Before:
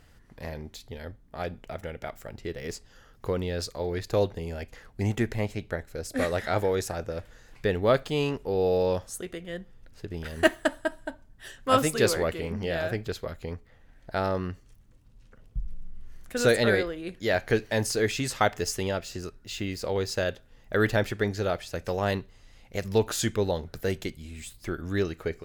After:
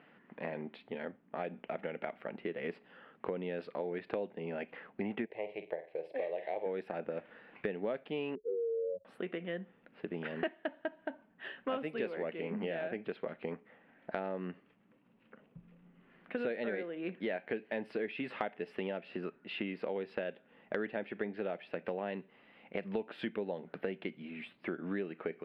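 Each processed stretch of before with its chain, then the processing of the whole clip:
5.25–6.66 tone controls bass -7 dB, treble -7 dB + fixed phaser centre 570 Hz, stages 4 + flutter echo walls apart 8.5 m, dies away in 0.26 s
8.35–9.05 spectral contrast raised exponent 3.2 + fixed phaser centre 340 Hz, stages 4
whole clip: elliptic band-pass 190–2700 Hz, stop band 40 dB; dynamic EQ 1200 Hz, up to -7 dB, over -46 dBFS, Q 2.3; compressor 6:1, threshold -36 dBFS; gain +2 dB

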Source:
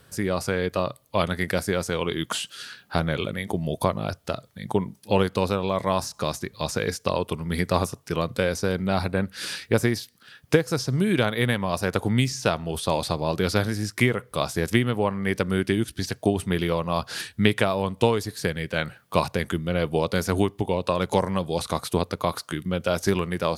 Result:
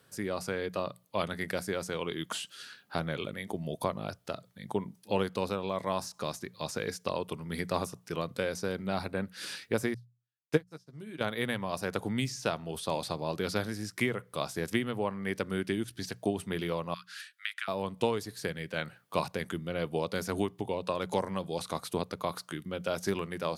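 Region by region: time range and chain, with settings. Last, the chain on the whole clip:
9.94–11.21 doubler 13 ms -7.5 dB + upward expander 2.5:1, over -42 dBFS
16.94–17.68 steep high-pass 1300 Hz 48 dB/oct + high shelf 3000 Hz -7.5 dB
whole clip: HPF 120 Hz 12 dB/oct; notches 60/120/180 Hz; gain -8 dB

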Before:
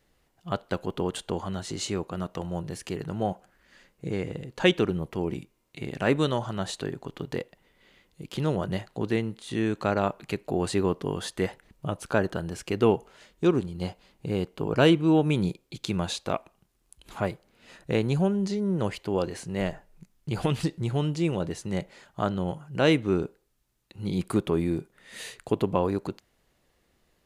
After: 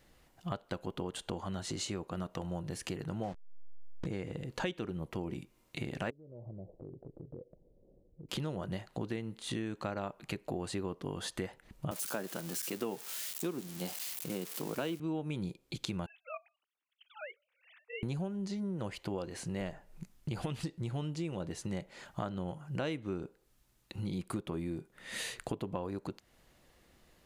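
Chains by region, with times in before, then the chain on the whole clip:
3.23–4.06 level-crossing sampler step -35.5 dBFS + air absorption 84 m
6.1–8.29 steep low-pass 570 Hz + compressor 3:1, threshold -49 dBFS + bell 230 Hz -6 dB 1 oct
11.91–15 switching spikes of -23.5 dBFS + HPF 160 Hz 24 dB/oct
16.06–18.03 sine-wave speech + differentiator
whole clip: notch 420 Hz, Q 12; compressor 5:1, threshold -40 dBFS; gain +4 dB

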